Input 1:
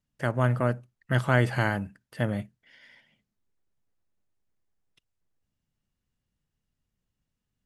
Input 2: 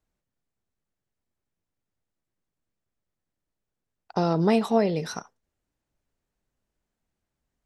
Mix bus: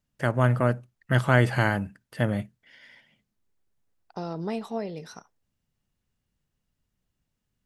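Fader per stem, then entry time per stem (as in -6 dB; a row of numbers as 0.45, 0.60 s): +2.5, -10.0 dB; 0.00, 0.00 s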